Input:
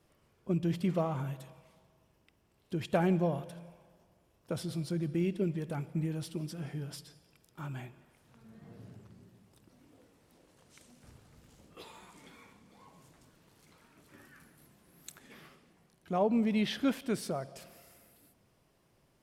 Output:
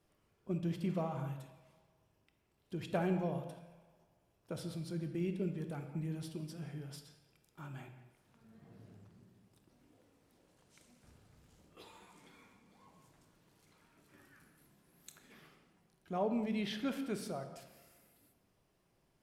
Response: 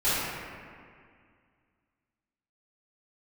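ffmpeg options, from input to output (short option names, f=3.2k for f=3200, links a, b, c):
-filter_complex "[0:a]asplit=2[a][b];[1:a]atrim=start_sample=2205,afade=t=out:st=0.28:d=0.01,atrim=end_sample=12789[c];[b][c]afir=irnorm=-1:irlink=0,volume=-19.5dB[d];[a][d]amix=inputs=2:normalize=0,volume=-7dB"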